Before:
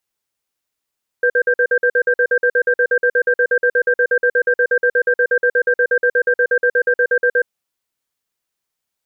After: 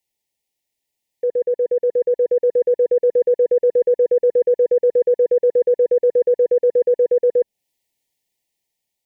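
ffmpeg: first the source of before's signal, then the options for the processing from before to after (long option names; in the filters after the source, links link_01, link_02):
-f lavfi -i "aevalsrc='0.2*(sin(2*PI*490*t)+sin(2*PI*1580*t))*clip(min(mod(t,0.12),0.07-mod(t,0.12))/0.005,0,1)':duration=6.19:sample_rate=44100"
-filter_complex "[0:a]acrossover=split=680[link_01][link_02];[link_02]alimiter=limit=-24dB:level=0:latency=1:release=276[link_03];[link_01][link_03]amix=inputs=2:normalize=0,asuperstop=centerf=1300:order=20:qfactor=1.6,dynaudnorm=framelen=800:gausssize=5:maxgain=5dB"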